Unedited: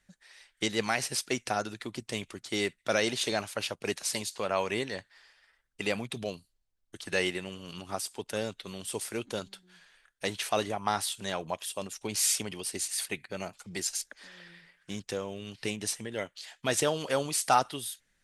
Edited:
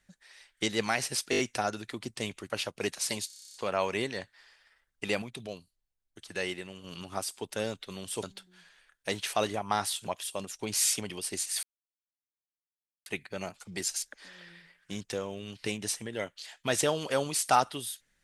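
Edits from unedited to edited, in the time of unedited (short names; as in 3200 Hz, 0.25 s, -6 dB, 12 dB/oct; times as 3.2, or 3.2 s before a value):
1.31 stutter 0.02 s, 5 plays
2.42–3.54 cut
4.31 stutter 0.03 s, 10 plays
5.99–7.61 gain -5 dB
9–9.39 cut
11.23–11.49 cut
13.05 insert silence 1.43 s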